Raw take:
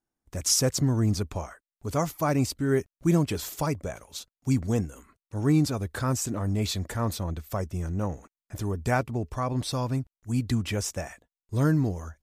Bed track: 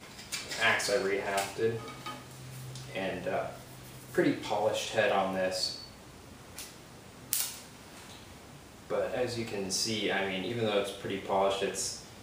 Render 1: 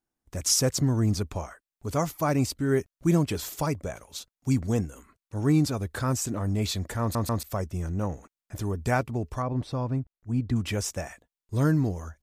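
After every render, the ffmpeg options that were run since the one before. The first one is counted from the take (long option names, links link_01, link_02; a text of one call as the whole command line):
ffmpeg -i in.wav -filter_complex "[0:a]asettb=1/sr,asplit=3[link_01][link_02][link_03];[link_01]atrim=end=9.424[link_04];[link_02]atrim=start=9.42:end=10.56,asetpts=PTS-STARTPTS,afade=type=in:duration=0.004:curve=qsin,afade=type=out:start_time=1.136:duration=0.004:curve=qsin,lowpass=frequency=1100:poles=1[link_05];[link_03]atrim=start=10.556[link_06];[link_04][link_05]acrossfade=duration=0.004:curve1=hsin:curve2=qsin[link_07];[link_07][link_06]acrossfade=duration=0.004:curve1=qsin:curve2=hsin,asplit=4[link_08][link_09][link_10][link_11];[link_08]atrim=end=7.152[link_12];[link_09]atrim=start=7.008:end=7.152[link_13];[link_10]atrim=start=7.008:end=7.152[link_14];[link_11]atrim=start=7.428[link_15];[link_12][link_13]acrossfade=duration=0.004:curve1=hsin:curve2=hsin[link_16];[link_16][link_14]acrossfade=duration=0.004:curve1=hsin:curve2=hsin[link_17];[link_17][link_15]acrossfade=duration=0.004:curve1=hsin:curve2=hsin" out.wav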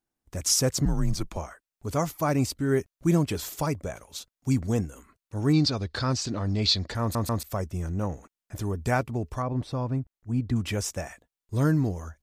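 ffmpeg -i in.wav -filter_complex "[0:a]asettb=1/sr,asplit=3[link_01][link_02][link_03];[link_01]atrim=end=0.854[link_04];[link_02]atrim=start=0.85:end=1.37,asetpts=PTS-STARTPTS,afade=type=in:duration=0.004:curve=qsin,afade=type=out:start_time=0.516:duration=0.004:curve=qsin,afreqshift=-87[link_05];[link_03]atrim=start=1.366[link_06];[link_04][link_05]acrossfade=duration=0.004:curve1=hsin:curve2=qsin[link_07];[link_07][link_06]acrossfade=duration=0.004:curve1=qsin:curve2=hsin,asettb=1/sr,asplit=3[link_08][link_09][link_10];[link_08]atrim=end=5.534[link_11];[link_09]atrim=start=5.53:end=6.95,asetpts=PTS-STARTPTS,afade=type=in:duration=0.004:curve=qsin,afade=type=out:start_time=1.416:duration=0.004:curve=qsin,lowpass=frequency=4500:width_type=q:width=4.6[link_12];[link_10]atrim=start=6.946[link_13];[link_11][link_12]acrossfade=duration=0.004:curve1=hsin:curve2=qsin[link_14];[link_14][link_13]acrossfade=duration=0.004:curve1=qsin:curve2=hsin" out.wav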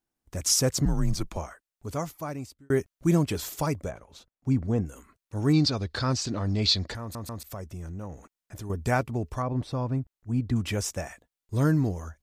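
ffmpeg -i in.wav -filter_complex "[0:a]asplit=3[link_01][link_02][link_03];[link_01]afade=type=out:start_time=3.89:duration=0.02[link_04];[link_02]lowpass=frequency=1200:poles=1,afade=type=in:start_time=3.89:duration=0.02,afade=type=out:start_time=4.85:duration=0.02[link_05];[link_03]afade=type=in:start_time=4.85:duration=0.02[link_06];[link_04][link_05][link_06]amix=inputs=3:normalize=0,asettb=1/sr,asplit=3[link_07][link_08][link_09];[link_07]atrim=end=6.954[link_10];[link_08]atrim=start=6.95:end=8.7,asetpts=PTS-STARTPTS,afade=type=in:duration=0.004:curve=qsin,afade=type=out:start_time=1.746:duration=0.004:curve=qsin,acompressor=threshold=-40dB:ratio=2:attack=3.2:release=140:knee=1:detection=peak[link_11];[link_09]atrim=start=8.696[link_12];[link_10][link_11]acrossfade=duration=0.004:curve1=hsin:curve2=qsin[link_13];[link_13][link_12]acrossfade=duration=0.004:curve1=qsin:curve2=hsin,asplit=2[link_14][link_15];[link_14]atrim=end=2.7,asetpts=PTS-STARTPTS,afade=type=out:start_time=1.47:duration=1.23[link_16];[link_15]atrim=start=2.7,asetpts=PTS-STARTPTS,afade=type=in:duration=0.004:curve=hsin[link_17];[link_16][link_17]concat=n=2:v=0:a=1" out.wav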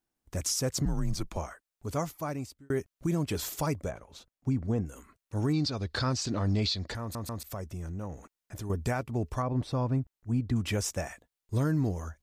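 ffmpeg -i in.wav -af "alimiter=limit=-20dB:level=0:latency=1:release=267" out.wav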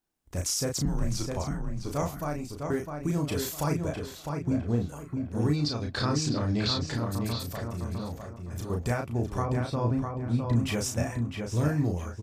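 ffmpeg -i in.wav -filter_complex "[0:a]asplit=2[link_01][link_02];[link_02]adelay=34,volume=-4dB[link_03];[link_01][link_03]amix=inputs=2:normalize=0,asplit=2[link_04][link_05];[link_05]adelay=656,lowpass=frequency=3000:poles=1,volume=-4.5dB,asplit=2[link_06][link_07];[link_07]adelay=656,lowpass=frequency=3000:poles=1,volume=0.32,asplit=2[link_08][link_09];[link_09]adelay=656,lowpass=frequency=3000:poles=1,volume=0.32,asplit=2[link_10][link_11];[link_11]adelay=656,lowpass=frequency=3000:poles=1,volume=0.32[link_12];[link_06][link_08][link_10][link_12]amix=inputs=4:normalize=0[link_13];[link_04][link_13]amix=inputs=2:normalize=0" out.wav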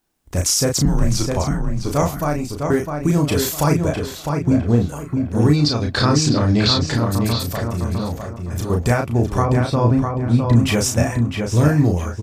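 ffmpeg -i in.wav -af "volume=11.5dB" out.wav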